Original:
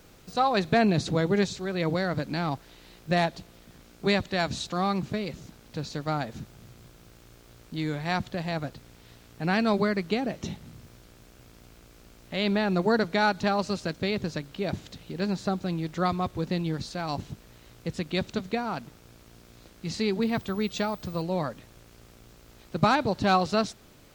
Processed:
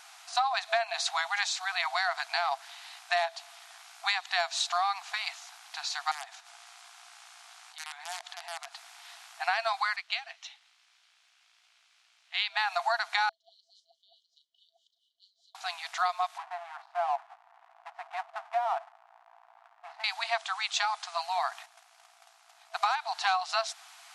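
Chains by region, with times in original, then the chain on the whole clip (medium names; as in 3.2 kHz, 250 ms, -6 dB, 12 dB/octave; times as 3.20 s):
6.11–8.75 s: integer overflow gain 21 dB + peaking EQ 13 kHz -11 dB 0.27 oct + compression 12:1, threshold -40 dBFS
9.96–12.57 s: band-pass filter 3.1 kHz, Q 1 + upward expansion, over -51 dBFS
13.29–15.55 s: brick-wall FIR band-stop 590–2900 Hz + doubling 36 ms -8.5 dB + wah-wah 4.7 Hz 510–1900 Hz, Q 9.5
16.38–20.04 s: low-pass 1.2 kHz + tilt EQ -4.5 dB/octave + hysteresis with a dead band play -37 dBFS
21.51–22.78 s: gate -51 dBFS, range -11 dB + peaking EQ 380 Hz +9 dB 2.6 oct
whole clip: FFT band-pass 660–12000 Hz; compression 10:1, threshold -32 dBFS; trim +7.5 dB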